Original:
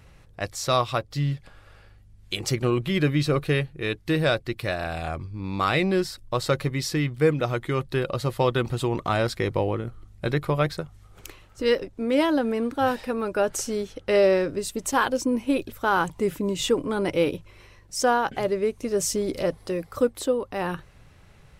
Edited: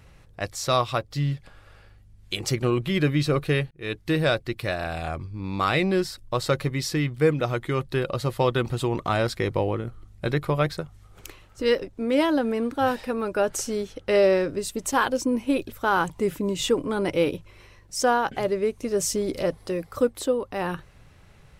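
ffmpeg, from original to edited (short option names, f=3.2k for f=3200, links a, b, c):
-filter_complex "[0:a]asplit=2[a][b];[a]atrim=end=3.71,asetpts=PTS-STARTPTS,afade=t=out:st=3.706:d=0.004:c=hsin[c];[b]atrim=start=3.71,asetpts=PTS-STARTPTS,afade=t=in:d=0.25[d];[c][d]concat=n=2:v=0:a=1"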